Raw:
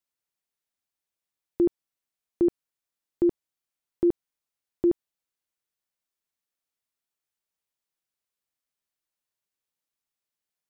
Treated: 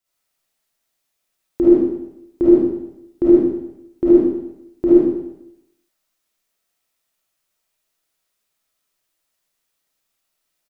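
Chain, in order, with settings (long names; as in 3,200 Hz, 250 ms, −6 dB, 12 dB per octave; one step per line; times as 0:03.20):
pitch-shifted copies added −5 semitones −16 dB
comb and all-pass reverb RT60 0.84 s, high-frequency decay 1×, pre-delay 10 ms, DRR −9.5 dB
level +4 dB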